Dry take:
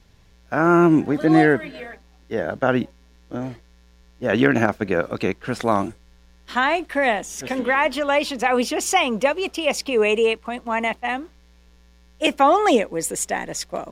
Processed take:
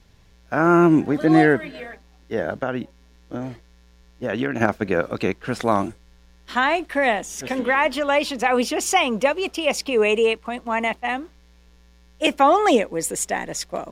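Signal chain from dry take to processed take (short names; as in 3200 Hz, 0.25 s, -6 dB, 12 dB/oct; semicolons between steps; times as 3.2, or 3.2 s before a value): 2.52–4.61 compressor 2.5:1, threshold -24 dBFS, peak gain reduction 9 dB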